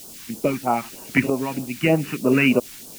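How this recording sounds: tremolo saw up 0.77 Hz, depth 70%; a quantiser's noise floor 8-bit, dither triangular; phasing stages 2, 3.2 Hz, lowest notch 510–2000 Hz

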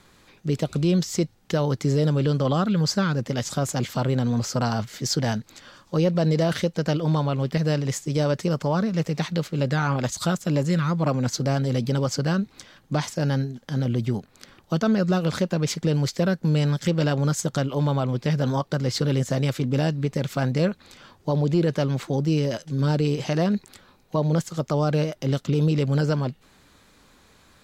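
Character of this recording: noise floor -57 dBFS; spectral tilt -6.5 dB/oct

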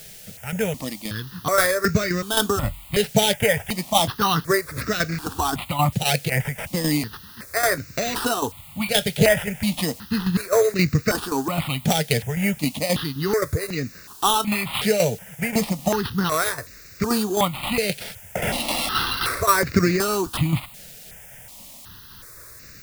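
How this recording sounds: aliases and images of a low sample rate 6800 Hz, jitter 0%; tremolo saw down 3.8 Hz, depth 60%; a quantiser's noise floor 8-bit, dither triangular; notches that jump at a steady rate 2.7 Hz 290–3200 Hz

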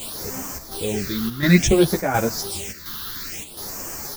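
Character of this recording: a quantiser's noise floor 6-bit, dither triangular; phasing stages 6, 0.58 Hz, lowest notch 610–3600 Hz; chopped level 1.4 Hz, depth 60%, duty 80%; a shimmering, thickened sound

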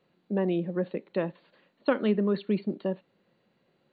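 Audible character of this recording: MP2

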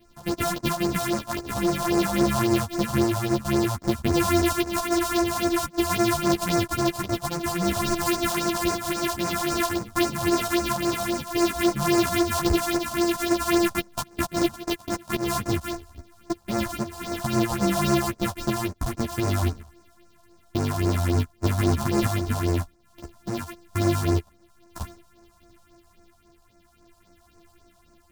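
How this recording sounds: a buzz of ramps at a fixed pitch in blocks of 128 samples; phasing stages 4, 3.7 Hz, lowest notch 330–3300 Hz; tremolo triangle 0.52 Hz, depth 35%; a shimmering, thickened sound

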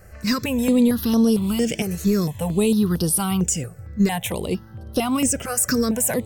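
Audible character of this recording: notches that jump at a steady rate 4.4 Hz 960–7300 Hz

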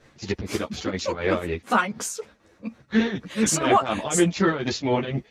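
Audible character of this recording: tremolo triangle 4.1 Hz, depth 80%; a shimmering, thickened sound

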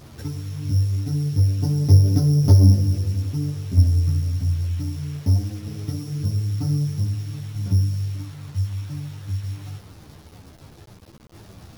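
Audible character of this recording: a buzz of ramps at a fixed pitch in blocks of 8 samples; tremolo saw down 0.53 Hz, depth 55%; a quantiser's noise floor 8-bit, dither none; a shimmering, thickened sound

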